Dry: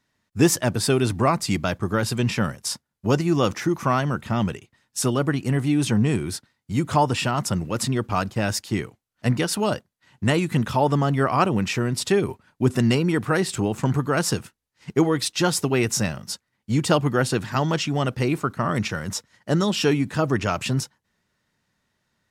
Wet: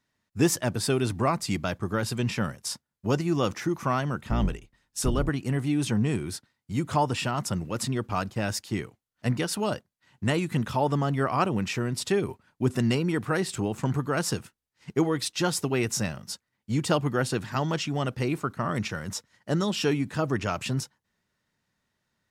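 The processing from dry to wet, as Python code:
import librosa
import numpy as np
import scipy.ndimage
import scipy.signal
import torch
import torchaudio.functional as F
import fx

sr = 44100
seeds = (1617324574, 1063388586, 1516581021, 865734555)

y = fx.octave_divider(x, sr, octaves=2, level_db=2.0, at=(4.29, 5.29))
y = F.gain(torch.from_numpy(y), -5.0).numpy()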